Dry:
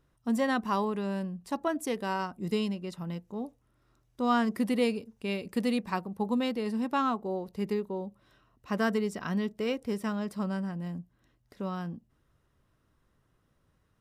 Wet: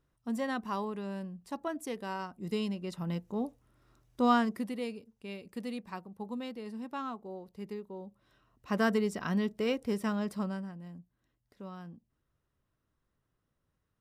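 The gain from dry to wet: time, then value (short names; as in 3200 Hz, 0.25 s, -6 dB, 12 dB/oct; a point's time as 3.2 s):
2.34 s -6 dB
3.18 s +2.5 dB
4.25 s +2.5 dB
4.75 s -10 dB
7.83 s -10 dB
8.77 s 0 dB
10.34 s 0 dB
10.79 s -10 dB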